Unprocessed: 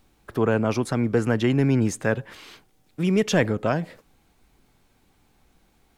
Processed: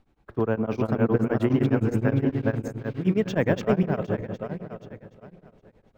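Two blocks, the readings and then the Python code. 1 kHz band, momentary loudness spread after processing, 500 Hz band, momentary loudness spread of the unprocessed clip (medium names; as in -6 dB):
-2.0 dB, 13 LU, -0.5 dB, 9 LU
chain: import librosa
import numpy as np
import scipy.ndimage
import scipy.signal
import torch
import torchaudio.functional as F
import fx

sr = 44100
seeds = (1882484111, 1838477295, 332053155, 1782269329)

y = fx.reverse_delay_fb(x, sr, ms=383, feedback_pct=45, wet_db=-0.5)
y = np.repeat(scipy.signal.resample_poly(y, 1, 2), 2)[:len(y)]
y = fx.lowpass(y, sr, hz=1400.0, slope=6)
y = fx.echo_filtered(y, sr, ms=178, feedback_pct=55, hz=1100.0, wet_db=-11)
y = y * np.abs(np.cos(np.pi * 9.7 * np.arange(len(y)) / sr))
y = y * 10.0 ** (-1.0 / 20.0)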